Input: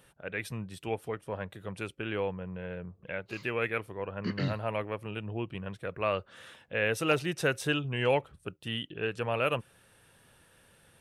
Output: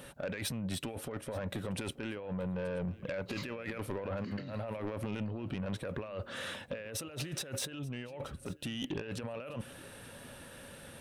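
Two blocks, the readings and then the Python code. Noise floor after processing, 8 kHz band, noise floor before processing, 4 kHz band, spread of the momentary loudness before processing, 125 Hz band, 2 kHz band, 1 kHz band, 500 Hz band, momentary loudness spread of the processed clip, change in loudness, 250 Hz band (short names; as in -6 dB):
-52 dBFS, +3.5 dB, -63 dBFS, -4.0 dB, 11 LU, -3.0 dB, -10.0 dB, -10.0 dB, -7.5 dB, 9 LU, -6.5 dB, -2.0 dB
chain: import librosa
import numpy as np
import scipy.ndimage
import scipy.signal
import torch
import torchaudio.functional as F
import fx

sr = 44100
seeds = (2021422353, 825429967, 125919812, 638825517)

y = fx.over_compress(x, sr, threshold_db=-42.0, ratio=-1.0)
y = fx.small_body(y, sr, hz=(250.0, 560.0, 3900.0), ring_ms=45, db=8)
y = 10.0 ** (-32.5 / 20.0) * np.tanh(y / 10.0 ** (-32.5 / 20.0))
y = y + 10.0 ** (-20.5 / 20.0) * np.pad(y, (int(880 * sr / 1000.0), 0))[:len(y)]
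y = F.gain(torch.from_numpy(y), 2.5).numpy()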